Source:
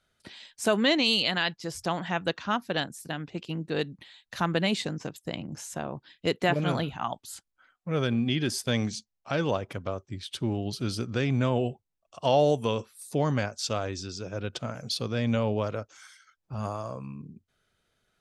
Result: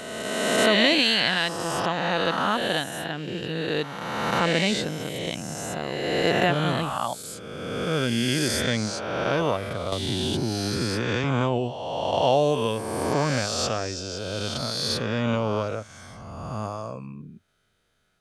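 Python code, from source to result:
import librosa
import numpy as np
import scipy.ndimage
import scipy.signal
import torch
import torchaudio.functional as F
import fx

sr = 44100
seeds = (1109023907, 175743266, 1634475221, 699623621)

y = fx.spec_swells(x, sr, rise_s=2.0)
y = fx.band_squash(y, sr, depth_pct=100, at=(9.92, 11.24))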